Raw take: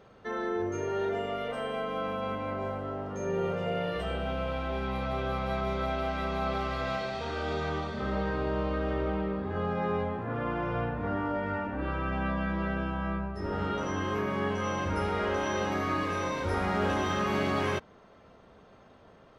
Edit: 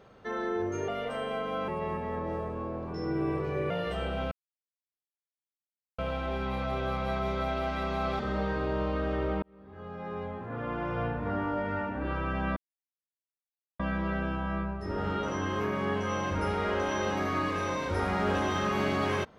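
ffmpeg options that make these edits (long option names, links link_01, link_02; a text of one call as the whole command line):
ffmpeg -i in.wav -filter_complex "[0:a]asplit=8[link_01][link_02][link_03][link_04][link_05][link_06][link_07][link_08];[link_01]atrim=end=0.882[link_09];[link_02]atrim=start=1.308:end=2.114[link_10];[link_03]atrim=start=2.11:end=3.79,asetpts=PTS-STARTPTS,asetrate=36603,aresample=44100[link_11];[link_04]atrim=start=3.786:end=4.4,asetpts=PTS-STARTPTS,afade=type=out:start_time=0.61:duration=0.004:curve=hsin,apad=pad_dur=1.67[link_12];[link_05]atrim=start=4.4:end=6.612,asetpts=PTS-STARTPTS,afade=type=in:duration=0.004:curve=hsin[link_13];[link_06]atrim=start=7.968:end=9.2,asetpts=PTS-STARTPTS,afade=type=out:start_time=1.228:duration=0.004:curve=hsin[link_14];[link_07]atrim=start=9.2:end=12.34,asetpts=PTS-STARTPTS,afade=type=in:duration=1.67,afade=type=out:start_time=3.136:duration=0.004:curve=hsin,apad=pad_dur=1.23[link_15];[link_08]atrim=start=12.34,asetpts=PTS-STARTPTS,afade=type=in:duration=0.004:curve=hsin[link_16];[link_09][link_10]acrossfade=duration=0.004:curve1=hsin:curve2=hsin[link_17];[link_17][link_11]acrossfade=duration=0.004:curve1=hsin:curve2=hsin[link_18];[link_12][link_13]concat=n=2:v=0:a=1[link_19];[link_18][link_19]acrossfade=duration=0.004:curve1=hsin:curve2=hsin[link_20];[link_14][link_15][link_16]concat=n=3:v=0:a=1[link_21];[link_20][link_21]acrossfade=duration=0.004:curve1=hsin:curve2=hsin" out.wav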